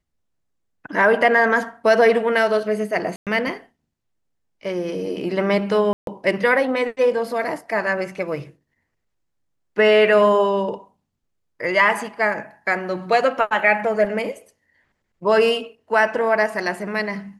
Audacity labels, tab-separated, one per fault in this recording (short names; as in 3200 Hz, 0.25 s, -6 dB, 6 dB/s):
3.160000	3.270000	gap 0.107 s
5.930000	6.070000	gap 0.142 s